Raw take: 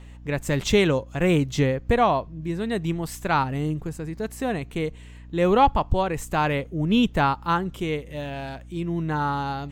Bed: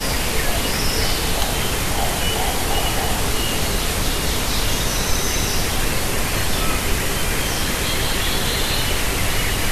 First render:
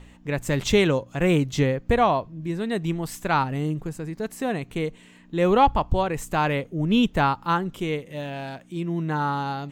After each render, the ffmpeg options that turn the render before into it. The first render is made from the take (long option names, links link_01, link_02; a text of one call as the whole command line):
ffmpeg -i in.wav -af "bandreject=frequency=60:width_type=h:width=4,bandreject=frequency=120:width_type=h:width=4" out.wav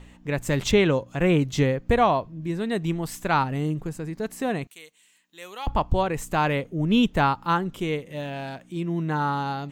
ffmpeg -i in.wav -filter_complex "[0:a]asettb=1/sr,asplit=3[link_01][link_02][link_03];[link_01]atrim=end=0.714[link_04];[link_02]atrim=start=0.71:end=1.42,asetpts=PTS-STARTPTS,afade=type=in:duration=0.004:curve=qsin,afade=type=out:start_time=0.706:duration=0.004:curve=qsin,acrossover=split=4100[link_05][link_06];[link_06]acompressor=threshold=-48dB:ratio=4:attack=1:release=60[link_07];[link_05][link_07]amix=inputs=2:normalize=0[link_08];[link_03]atrim=start=1.416[link_09];[link_04][link_08]acrossfade=duration=0.004:curve1=hsin:curve2=qsin[link_10];[link_10][link_09]acrossfade=duration=0.004:curve1=qsin:curve2=hsin,asettb=1/sr,asplit=3[link_11][link_12][link_13];[link_11]atrim=end=4.674[link_14];[link_12]atrim=start=4.67:end=5.67,asetpts=PTS-STARTPTS,afade=type=in:duration=0.004:curve=qsin,afade=type=out:start_time=0.996:duration=0.004:curve=qsin,aderivative[link_15];[link_13]atrim=start=5.666[link_16];[link_14][link_15]acrossfade=duration=0.004:curve1=hsin:curve2=qsin[link_17];[link_17][link_16]acrossfade=duration=0.004:curve1=qsin:curve2=hsin" out.wav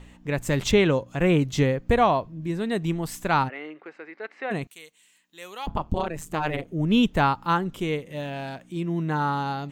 ffmpeg -i in.wav -filter_complex "[0:a]asplit=3[link_01][link_02][link_03];[link_01]afade=type=out:start_time=3.48:duration=0.02[link_04];[link_02]highpass=frequency=410:width=0.5412,highpass=frequency=410:width=1.3066,equalizer=frequency=450:width_type=q:width=4:gain=-5,equalizer=frequency=660:width_type=q:width=4:gain=-4,equalizer=frequency=1000:width_type=q:width=4:gain=-4,equalizer=frequency=1400:width_type=q:width=4:gain=4,equalizer=frequency=2100:width_type=q:width=4:gain=8,equalizer=frequency=3300:width_type=q:width=4:gain=-6,lowpass=frequency=3400:width=0.5412,lowpass=frequency=3400:width=1.3066,afade=type=in:start_time=3.48:duration=0.02,afade=type=out:start_time=4.5:duration=0.02[link_05];[link_03]afade=type=in:start_time=4.5:duration=0.02[link_06];[link_04][link_05][link_06]amix=inputs=3:normalize=0,asettb=1/sr,asplit=3[link_07][link_08][link_09];[link_07]atrim=end=5.664[link_10];[link_08]atrim=start=5.66:end=6.68,asetpts=PTS-STARTPTS,afade=type=in:duration=0.004:curve=qsin,afade=type=out:start_time=1.016:duration=0.004:curve=qsin,tremolo=f=160:d=0.947[link_11];[link_09]atrim=start=6.676[link_12];[link_10][link_11]acrossfade=duration=0.004:curve1=hsin:curve2=qsin[link_13];[link_13][link_12]acrossfade=duration=0.004:curve1=qsin:curve2=hsin" out.wav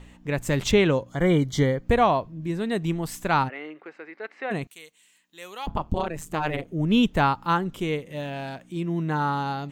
ffmpeg -i in.wav -filter_complex "[0:a]asettb=1/sr,asplit=3[link_01][link_02][link_03];[link_01]atrim=end=1.094[link_04];[link_02]atrim=start=1.09:end=1.84,asetpts=PTS-STARTPTS,afade=type=in:duration=0.004:curve=qsin,afade=type=out:start_time=0.746:duration=0.004:curve=qsin,asuperstop=centerf=2600:order=20:qfactor=5.4[link_05];[link_03]atrim=start=1.836[link_06];[link_04][link_05]acrossfade=duration=0.004:curve1=hsin:curve2=qsin[link_07];[link_07][link_06]acrossfade=duration=0.004:curve1=qsin:curve2=hsin" out.wav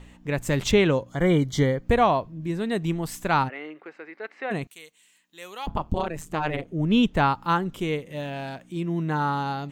ffmpeg -i in.wav -filter_complex "[0:a]asettb=1/sr,asplit=3[link_01][link_02][link_03];[link_01]atrim=end=6.224[link_04];[link_02]atrim=start=6.22:end=7.3,asetpts=PTS-STARTPTS,afade=type=in:duration=0.004:curve=qsin,afade=type=out:start_time=1.076:duration=0.004:curve=qsin,highshelf=frequency=8900:gain=-8[link_05];[link_03]atrim=start=7.296[link_06];[link_04][link_05]acrossfade=duration=0.004:curve1=hsin:curve2=qsin[link_07];[link_07][link_06]acrossfade=duration=0.004:curve1=qsin:curve2=hsin" out.wav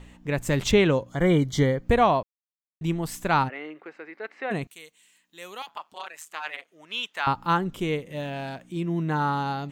ffmpeg -i in.wav -filter_complex "[0:a]asettb=1/sr,asplit=3[link_01][link_02][link_03];[link_01]atrim=end=5.624[link_04];[link_02]atrim=start=5.62:end=7.27,asetpts=PTS-STARTPTS,afade=type=in:duration=0.004:curve=qsin,afade=type=out:start_time=1.646:duration=0.004:curve=qsin,highpass=1400[link_05];[link_03]atrim=start=7.266[link_06];[link_04][link_05]acrossfade=duration=0.004:curve1=hsin:curve2=qsin[link_07];[link_07][link_06]acrossfade=duration=0.004:curve1=qsin:curve2=hsin,asplit=3[link_08][link_09][link_10];[link_08]atrim=end=2.23,asetpts=PTS-STARTPTS,afade=type=out:start_time=2.226:duration=0.004:curve=hsin[link_11];[link_09]atrim=start=2.23:end=2.81,asetpts=PTS-STARTPTS,volume=0[link_12];[link_10]atrim=start=2.81,asetpts=PTS-STARTPTS,afade=type=in:duration=0.004:curve=hsin[link_13];[link_11][link_12][link_13]concat=n=3:v=0:a=1" out.wav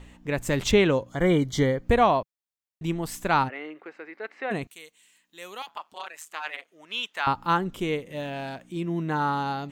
ffmpeg -i in.wav -af "equalizer=frequency=150:width_type=o:width=0.49:gain=-4" out.wav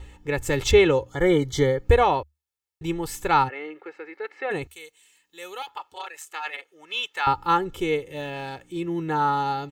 ffmpeg -i in.wav -af "equalizer=frequency=74:width=4.7:gain=10,aecho=1:1:2.3:0.77" out.wav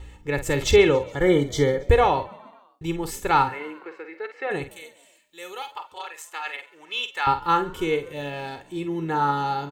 ffmpeg -i in.wav -filter_complex "[0:a]asplit=2[link_01][link_02];[link_02]adelay=49,volume=-10dB[link_03];[link_01][link_03]amix=inputs=2:normalize=0,asplit=5[link_04][link_05][link_06][link_07][link_08];[link_05]adelay=137,afreqshift=47,volume=-23dB[link_09];[link_06]adelay=274,afreqshift=94,volume=-27.6dB[link_10];[link_07]adelay=411,afreqshift=141,volume=-32.2dB[link_11];[link_08]adelay=548,afreqshift=188,volume=-36.7dB[link_12];[link_04][link_09][link_10][link_11][link_12]amix=inputs=5:normalize=0" out.wav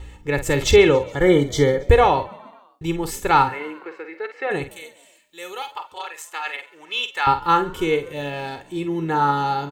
ffmpeg -i in.wav -af "volume=3.5dB,alimiter=limit=-3dB:level=0:latency=1" out.wav